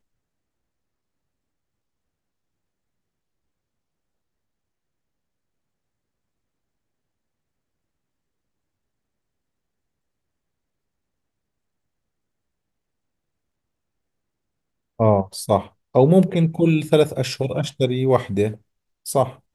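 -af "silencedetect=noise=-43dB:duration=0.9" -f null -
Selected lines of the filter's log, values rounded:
silence_start: 0.00
silence_end: 14.99 | silence_duration: 14.99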